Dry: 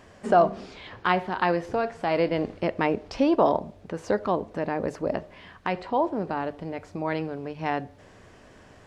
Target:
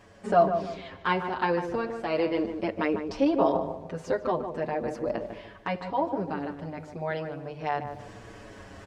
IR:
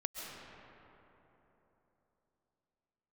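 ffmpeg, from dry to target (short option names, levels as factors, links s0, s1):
-filter_complex "[0:a]areverse,acompressor=mode=upward:threshold=0.02:ratio=2.5,areverse,asplit=2[s0][s1];[s1]adelay=149,lowpass=f=1300:p=1,volume=0.447,asplit=2[s2][s3];[s3]adelay=149,lowpass=f=1300:p=1,volume=0.38,asplit=2[s4][s5];[s5]adelay=149,lowpass=f=1300:p=1,volume=0.38,asplit=2[s6][s7];[s7]adelay=149,lowpass=f=1300:p=1,volume=0.38[s8];[s0][s2][s4][s6][s8]amix=inputs=5:normalize=0,asplit=2[s9][s10];[s10]adelay=6.7,afreqshift=-0.36[s11];[s9][s11]amix=inputs=2:normalize=1"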